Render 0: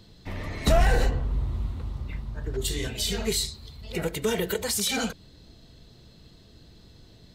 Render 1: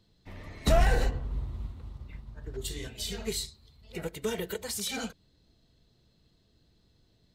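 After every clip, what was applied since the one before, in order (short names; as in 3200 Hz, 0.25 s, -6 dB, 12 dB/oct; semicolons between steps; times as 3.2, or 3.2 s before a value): upward expander 1.5:1, over -41 dBFS; gain -2 dB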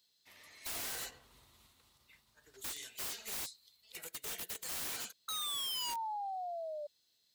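painted sound fall, 5.28–6.87, 580–1300 Hz -25 dBFS; differentiator; wrapped overs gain 39.5 dB; gain +4.5 dB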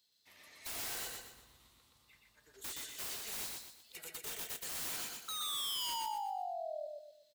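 feedback echo 0.122 s, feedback 38%, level -3 dB; gain -2 dB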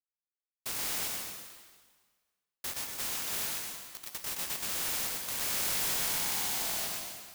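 spectral contrast lowered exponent 0.12; bit-crush 7-bit; reverb RT60 1.6 s, pre-delay 94 ms, DRR 2 dB; gain +5 dB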